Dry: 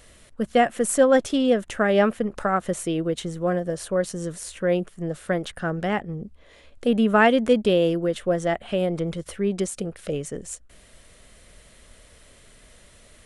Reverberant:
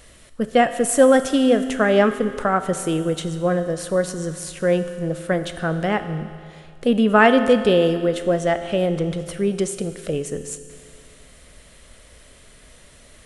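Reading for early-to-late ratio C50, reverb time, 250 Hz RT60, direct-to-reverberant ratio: 11.0 dB, 2.2 s, 2.2 s, 9.5 dB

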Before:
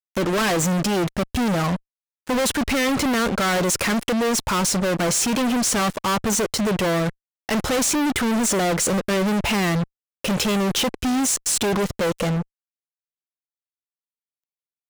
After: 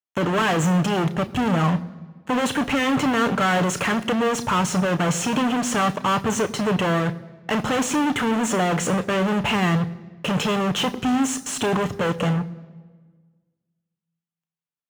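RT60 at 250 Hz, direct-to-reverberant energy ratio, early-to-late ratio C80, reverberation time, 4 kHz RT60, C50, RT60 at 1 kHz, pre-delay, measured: 1.8 s, 10.0 dB, 19.5 dB, 1.5 s, 1.1 s, 18.5 dB, 1.4 s, 3 ms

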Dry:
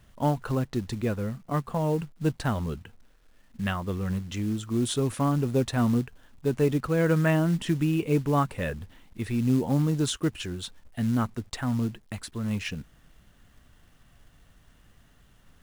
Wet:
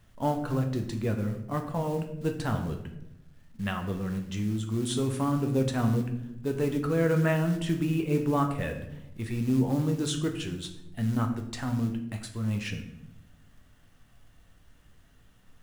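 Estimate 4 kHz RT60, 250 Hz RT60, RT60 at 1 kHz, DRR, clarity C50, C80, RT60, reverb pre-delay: 0.55 s, 1.3 s, 0.70 s, 4.0 dB, 9.0 dB, 11.0 dB, 0.85 s, 10 ms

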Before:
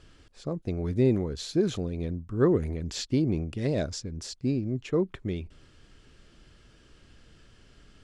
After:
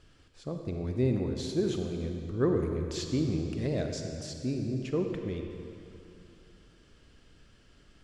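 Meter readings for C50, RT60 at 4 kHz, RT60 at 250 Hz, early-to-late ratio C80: 4.0 dB, 2.2 s, 2.8 s, 5.0 dB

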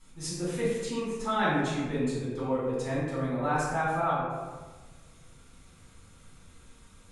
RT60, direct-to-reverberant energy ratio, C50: 1.3 s, -11.5 dB, -1.0 dB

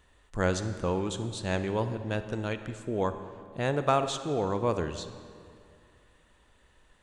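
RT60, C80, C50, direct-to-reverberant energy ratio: 2.3 s, 11.0 dB, 10.0 dB, 9.5 dB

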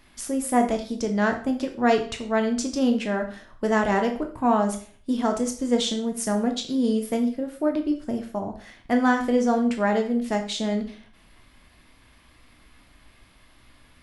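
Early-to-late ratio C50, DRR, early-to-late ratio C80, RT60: 10.0 dB, 4.0 dB, 14.0 dB, 0.45 s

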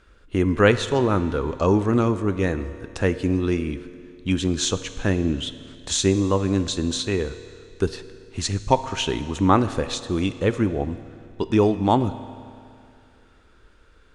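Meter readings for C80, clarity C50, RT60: 13.5 dB, 12.5 dB, 2.4 s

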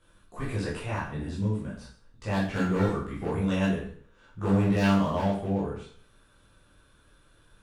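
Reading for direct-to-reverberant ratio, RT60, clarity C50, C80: -8.0 dB, 0.50 s, 4.5 dB, 8.5 dB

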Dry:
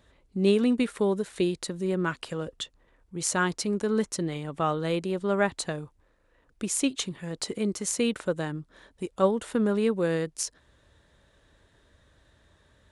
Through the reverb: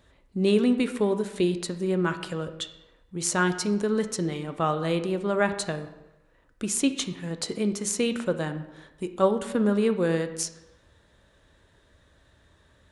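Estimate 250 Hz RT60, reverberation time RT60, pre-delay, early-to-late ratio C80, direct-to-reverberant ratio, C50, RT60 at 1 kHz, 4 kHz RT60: 0.95 s, 1.0 s, 10 ms, 13.0 dB, 8.5 dB, 11.0 dB, 1.0 s, 0.75 s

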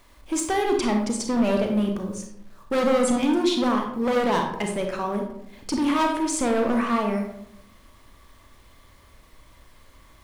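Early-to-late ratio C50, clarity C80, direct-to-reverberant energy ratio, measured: 5.0 dB, 8.0 dB, 2.5 dB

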